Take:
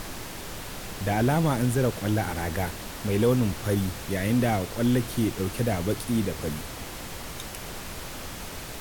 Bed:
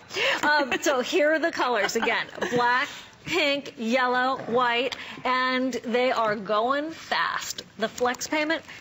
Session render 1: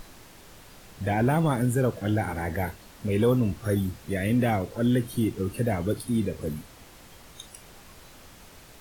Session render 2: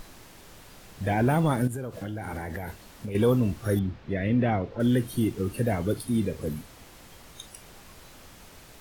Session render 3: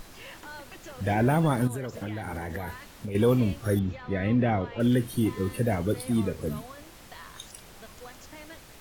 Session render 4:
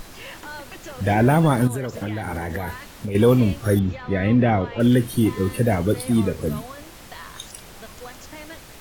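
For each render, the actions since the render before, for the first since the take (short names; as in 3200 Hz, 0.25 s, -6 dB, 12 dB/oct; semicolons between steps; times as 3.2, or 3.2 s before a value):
noise print and reduce 12 dB
1.67–3.15 compressor 12:1, threshold -29 dBFS; 3.79–4.8 air absorption 230 m
add bed -22 dB
gain +6.5 dB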